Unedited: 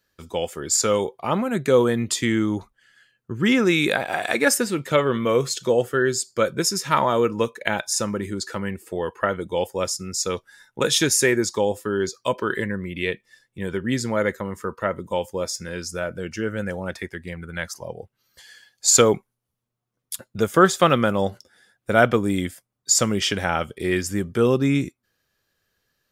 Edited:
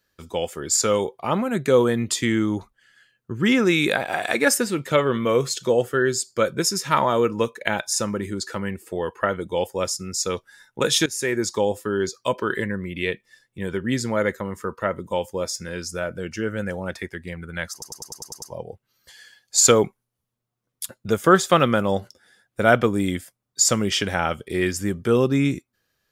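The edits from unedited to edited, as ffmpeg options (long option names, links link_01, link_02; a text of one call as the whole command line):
ffmpeg -i in.wav -filter_complex "[0:a]asplit=9[link_01][link_02][link_03][link_04][link_05][link_06][link_07][link_08][link_09];[link_01]atrim=end=11.06,asetpts=PTS-STARTPTS,afade=type=out:start_time=11.056:duration=0.004:curve=hsin:silence=0.125893[link_10];[link_02]atrim=start=11.06:end=17.822,asetpts=PTS-STARTPTS,afade=type=in:duration=0.45:silence=0.125893[link_11];[link_03]atrim=start=17.718:end=17.822[link_12];[link_04]atrim=start=17.718:end=17.822[link_13];[link_05]atrim=start=17.718:end=17.822[link_14];[link_06]atrim=start=17.718:end=17.822[link_15];[link_07]atrim=start=17.718:end=17.822[link_16];[link_08]atrim=start=17.718:end=17.822[link_17];[link_09]atrim=start=17.718[link_18];[link_10][link_11]concat=n=2:v=0:a=1[link_19];[link_19][link_12]acrossfade=duration=0.004:curve1=hsin:curve2=hsin[link_20];[link_20][link_13]acrossfade=duration=0.004:curve1=hsin:curve2=hsin[link_21];[link_21][link_14]acrossfade=duration=0.004:curve1=hsin:curve2=hsin[link_22];[link_22][link_15]acrossfade=duration=0.004:curve1=hsin:curve2=hsin[link_23];[link_23][link_16]acrossfade=duration=0.004:curve1=hsin:curve2=hsin[link_24];[link_24][link_17]acrossfade=duration=0.004:curve1=hsin:curve2=hsin[link_25];[link_25][link_18]acrossfade=duration=0.004:curve1=hsin:curve2=hsin" out.wav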